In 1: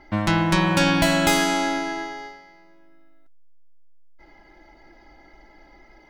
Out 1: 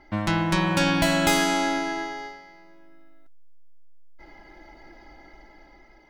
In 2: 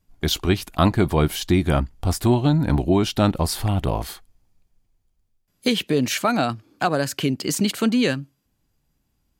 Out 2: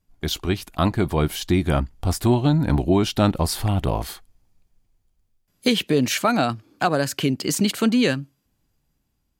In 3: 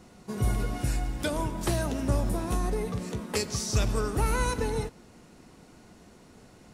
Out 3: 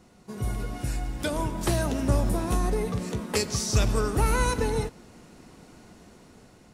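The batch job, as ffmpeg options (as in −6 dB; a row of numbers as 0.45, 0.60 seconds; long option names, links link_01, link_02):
-af "dynaudnorm=framelen=480:gausssize=5:maxgain=6.5dB,volume=-3.5dB"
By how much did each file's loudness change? −2.5, 0.0, +2.5 LU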